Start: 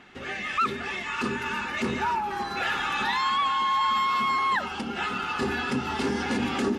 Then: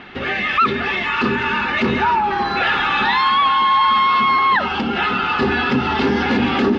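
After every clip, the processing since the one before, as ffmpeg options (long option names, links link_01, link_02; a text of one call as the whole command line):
ffmpeg -i in.wav -filter_complex "[0:a]lowpass=frequency=4300:width=0.5412,lowpass=frequency=4300:width=1.3066,asplit=2[link_01][link_02];[link_02]alimiter=level_in=3dB:limit=-24dB:level=0:latency=1,volume=-3dB,volume=1.5dB[link_03];[link_01][link_03]amix=inputs=2:normalize=0,volume=6.5dB" out.wav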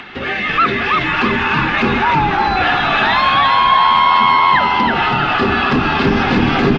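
ffmpeg -i in.wav -filter_complex "[0:a]acrossover=split=220|820[link_01][link_02][link_03];[link_03]acompressor=mode=upward:threshold=-31dB:ratio=2.5[link_04];[link_01][link_02][link_04]amix=inputs=3:normalize=0,asplit=7[link_05][link_06][link_07][link_08][link_09][link_10][link_11];[link_06]adelay=326,afreqshift=-83,volume=-3dB[link_12];[link_07]adelay=652,afreqshift=-166,volume=-9.4dB[link_13];[link_08]adelay=978,afreqshift=-249,volume=-15.8dB[link_14];[link_09]adelay=1304,afreqshift=-332,volume=-22.1dB[link_15];[link_10]adelay=1630,afreqshift=-415,volume=-28.5dB[link_16];[link_11]adelay=1956,afreqshift=-498,volume=-34.9dB[link_17];[link_05][link_12][link_13][link_14][link_15][link_16][link_17]amix=inputs=7:normalize=0,volume=1.5dB" out.wav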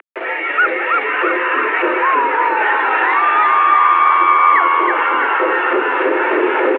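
ffmpeg -i in.wav -af "acrusher=bits=3:mix=0:aa=0.000001,highpass=frequency=220:width_type=q:width=0.5412,highpass=frequency=220:width_type=q:width=1.307,lowpass=frequency=2300:width_type=q:width=0.5176,lowpass=frequency=2300:width_type=q:width=0.7071,lowpass=frequency=2300:width_type=q:width=1.932,afreqshift=120,aecho=1:1:670:0.316" out.wav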